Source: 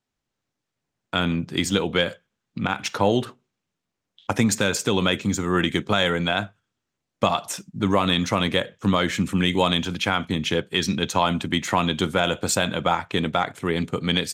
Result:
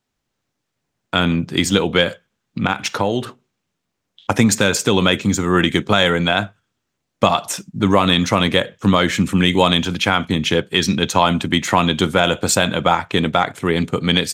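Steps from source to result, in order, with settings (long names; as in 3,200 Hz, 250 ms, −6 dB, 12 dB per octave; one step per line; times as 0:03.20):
0:02.71–0:03.24: downward compressor 2.5 to 1, threshold −23 dBFS, peak gain reduction 6.5 dB
level +6 dB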